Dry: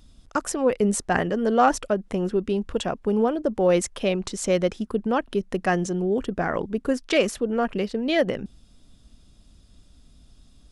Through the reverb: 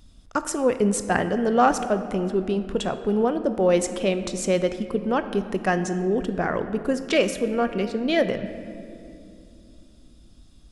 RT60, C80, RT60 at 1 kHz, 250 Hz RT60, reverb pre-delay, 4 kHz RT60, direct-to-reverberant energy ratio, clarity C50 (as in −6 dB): 2.6 s, 11.5 dB, 2.2 s, 4.1 s, 19 ms, 1.5 s, 9.5 dB, 10.5 dB